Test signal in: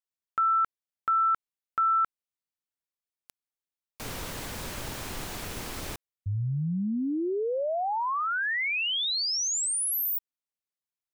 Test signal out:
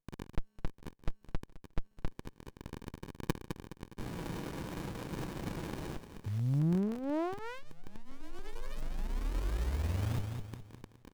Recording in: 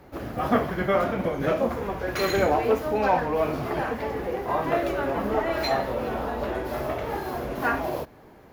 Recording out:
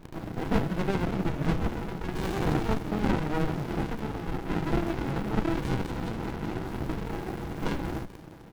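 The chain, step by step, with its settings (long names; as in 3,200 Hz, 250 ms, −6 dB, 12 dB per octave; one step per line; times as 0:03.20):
high-pass filter 130 Hz 6 dB per octave
comb filter 6.1 ms, depth 63%
reversed playback
upward compression 1.5 to 1, threshold −29 dBFS
reversed playback
surface crackle 31 per second −34 dBFS
on a send: delay with a high-pass on its return 209 ms, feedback 39%, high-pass 2,900 Hz, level −5 dB
on the sum: windowed peak hold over 65 samples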